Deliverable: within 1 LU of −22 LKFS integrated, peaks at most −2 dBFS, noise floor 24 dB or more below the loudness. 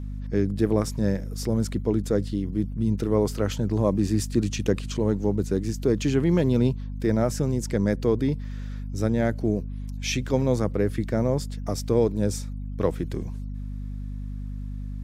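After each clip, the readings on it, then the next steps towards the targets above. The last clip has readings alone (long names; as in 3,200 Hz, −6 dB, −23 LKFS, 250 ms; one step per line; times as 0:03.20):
mains hum 50 Hz; hum harmonics up to 250 Hz; level of the hum −30 dBFS; integrated loudness −25.5 LKFS; sample peak −8.5 dBFS; target loudness −22.0 LKFS
→ mains-hum notches 50/100/150/200/250 Hz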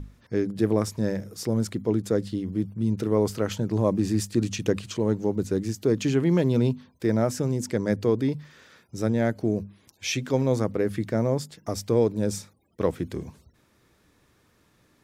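mains hum none found; integrated loudness −26.0 LKFS; sample peak −9.0 dBFS; target loudness −22.0 LKFS
→ level +4 dB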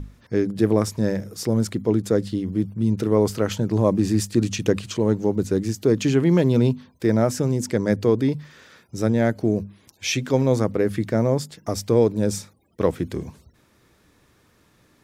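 integrated loudness −22.0 LKFS; sample peak −5.0 dBFS; background noise floor −60 dBFS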